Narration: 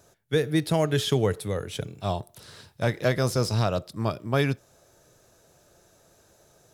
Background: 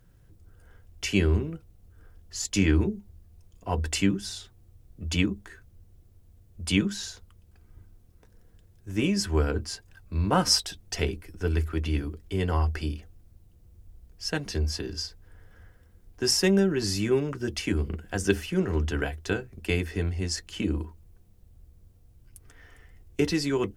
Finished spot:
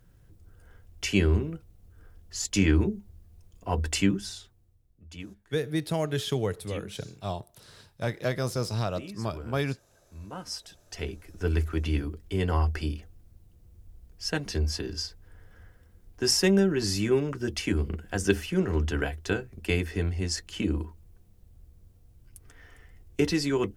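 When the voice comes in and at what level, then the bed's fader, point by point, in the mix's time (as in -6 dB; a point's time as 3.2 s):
5.20 s, -5.0 dB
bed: 4.18 s 0 dB
5.06 s -17 dB
10.39 s -17 dB
11.48 s 0 dB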